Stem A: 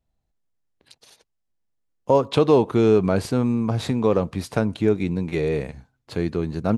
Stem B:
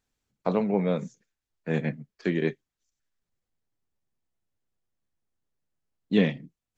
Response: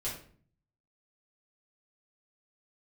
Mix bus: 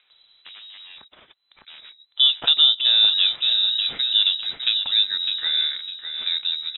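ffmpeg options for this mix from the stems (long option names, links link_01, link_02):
-filter_complex "[0:a]adelay=100,volume=0.5dB,asplit=2[link_01][link_02];[link_02]volume=-8.5dB[link_03];[1:a]lowpass=frequency=3100:width=0.5412,lowpass=frequency=3100:width=1.3066,aeval=exprs='0.0562*(abs(mod(val(0)/0.0562+3,4)-2)-1)':channel_layout=same,volume=-16dB[link_04];[link_03]aecho=0:1:605|1210|1815|2420:1|0.28|0.0784|0.022[link_05];[link_01][link_04][link_05]amix=inputs=3:normalize=0,lowshelf=frequency=85:gain=-12,acompressor=mode=upward:threshold=-36dB:ratio=2.5,lowpass=frequency=3400:width_type=q:width=0.5098,lowpass=frequency=3400:width_type=q:width=0.6013,lowpass=frequency=3400:width_type=q:width=0.9,lowpass=frequency=3400:width_type=q:width=2.563,afreqshift=-4000"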